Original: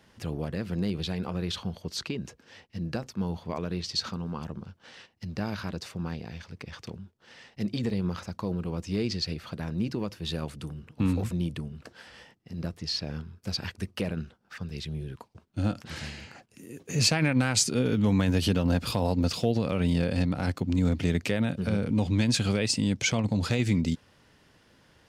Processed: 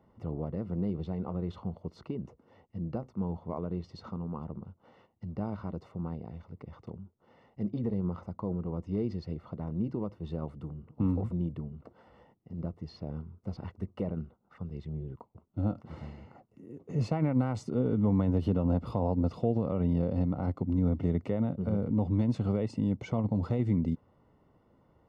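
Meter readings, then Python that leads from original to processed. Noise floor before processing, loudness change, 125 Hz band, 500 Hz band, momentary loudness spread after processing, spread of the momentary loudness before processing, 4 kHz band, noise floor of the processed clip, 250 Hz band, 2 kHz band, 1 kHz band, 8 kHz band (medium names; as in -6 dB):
-62 dBFS, -3.5 dB, -2.5 dB, -2.5 dB, 16 LU, 17 LU, -24.5 dB, -67 dBFS, -2.5 dB, -18.5 dB, -4.0 dB, under -25 dB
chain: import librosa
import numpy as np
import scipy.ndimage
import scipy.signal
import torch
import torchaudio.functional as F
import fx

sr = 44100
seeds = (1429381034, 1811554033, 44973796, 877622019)

y = scipy.signal.savgol_filter(x, 65, 4, mode='constant')
y = y * librosa.db_to_amplitude(-2.5)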